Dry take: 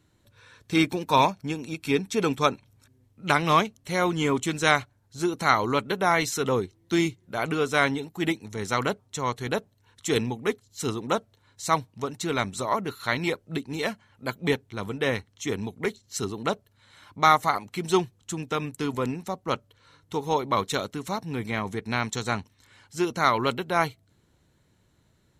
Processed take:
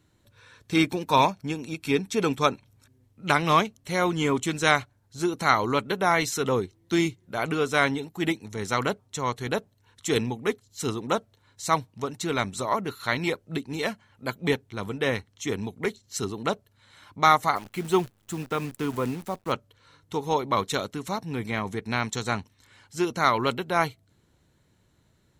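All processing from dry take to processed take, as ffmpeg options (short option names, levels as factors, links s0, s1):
-filter_complex "[0:a]asettb=1/sr,asplit=3[s0][s1][s2];[s0]atrim=end=17.564[s3];[s1]atrim=start=17.56:end=19.52,asetpts=PTS-STARTPTS,afade=t=in:d=0.004:c=qsin,afade=t=out:st=1.956:d=0.004:c=qsin,equalizer=f=5200:w=1.2:g=-9,acrusher=bits=8:dc=4:mix=0:aa=0.000001[s4];[s2]atrim=start=19.516[s5];[s3][s4]acrossfade=d=0.004:c1=hsin:c2=qsin[s6];[s6][s5]acrossfade=d=0.004:c1=qsin:c2=hsin"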